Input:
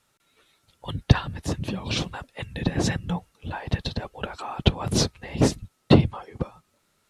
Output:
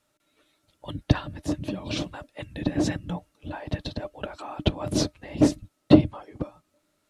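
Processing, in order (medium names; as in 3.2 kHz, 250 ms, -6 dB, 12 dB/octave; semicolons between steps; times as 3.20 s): small resonant body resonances 300/600 Hz, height 14 dB, ringing for 90 ms; trim -5 dB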